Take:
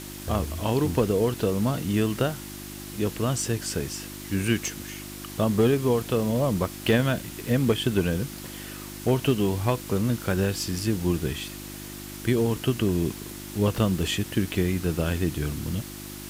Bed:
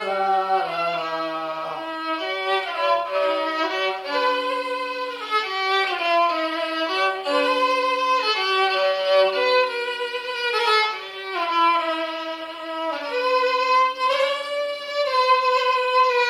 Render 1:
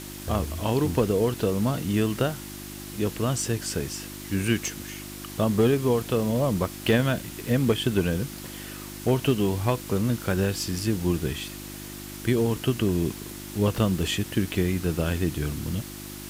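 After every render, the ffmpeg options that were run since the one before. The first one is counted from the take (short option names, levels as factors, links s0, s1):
-af anull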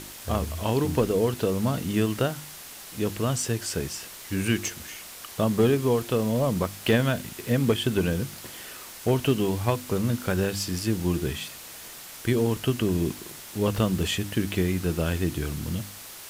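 -af "bandreject=f=50:t=h:w=4,bandreject=f=100:t=h:w=4,bandreject=f=150:t=h:w=4,bandreject=f=200:t=h:w=4,bandreject=f=250:t=h:w=4,bandreject=f=300:t=h:w=4,bandreject=f=350:t=h:w=4"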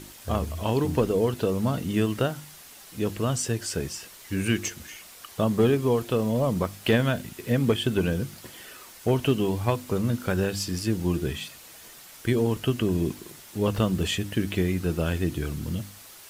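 -af "afftdn=nr=6:nf=-43"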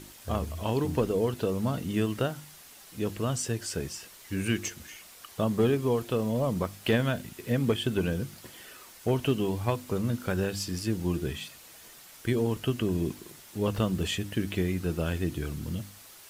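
-af "volume=0.668"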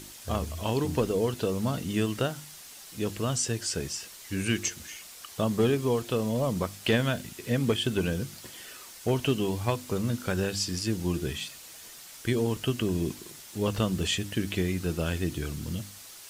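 -filter_complex "[0:a]acrossover=split=8300[s0][s1];[s1]acompressor=threshold=0.00112:ratio=4:attack=1:release=60[s2];[s0][s2]amix=inputs=2:normalize=0,highshelf=f=4100:g=10"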